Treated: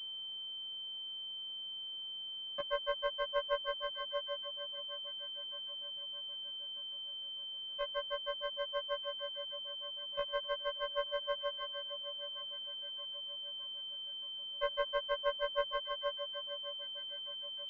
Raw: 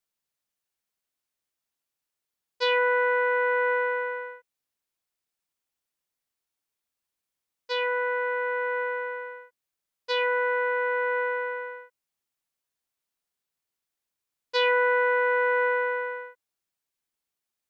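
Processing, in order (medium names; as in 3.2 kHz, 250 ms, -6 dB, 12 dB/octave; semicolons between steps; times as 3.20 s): granulator 92 ms, grains 6.3 per s, pitch spread up and down by 0 st; in parallel at 0 dB: compression 6:1, threshold -35 dBFS, peak gain reduction 13.5 dB; on the sum: echo whose repeats swap between lows and highs 619 ms, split 1.1 kHz, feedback 55%, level -8 dB; word length cut 10-bit, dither triangular; frequency shift +81 Hz; class-D stage that switches slowly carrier 3.1 kHz; trim -8.5 dB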